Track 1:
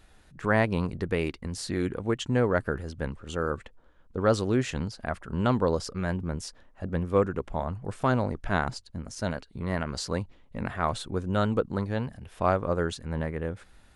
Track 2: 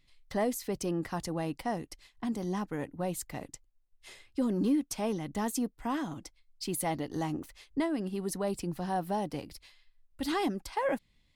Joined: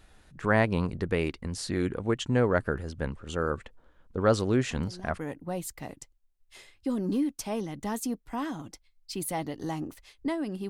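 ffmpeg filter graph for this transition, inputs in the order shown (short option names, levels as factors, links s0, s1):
-filter_complex "[1:a]asplit=2[s0][s1];[0:a]apad=whole_dur=10.69,atrim=end=10.69,atrim=end=5.192[s2];[s1]atrim=start=2.708:end=8.21[s3];[s0]atrim=start=1.86:end=2.71,asetpts=PTS-STARTPTS,volume=0.237,afade=t=in:d=0.004:c=hsin,afade=t=out:st=0.846:d=0.004:c=hsin,adelay=4340[s4];[s2][s3]acrossfade=d=0.004:c1=hsin:c2=hsin[s5];[s5][s4]amix=inputs=2:normalize=0"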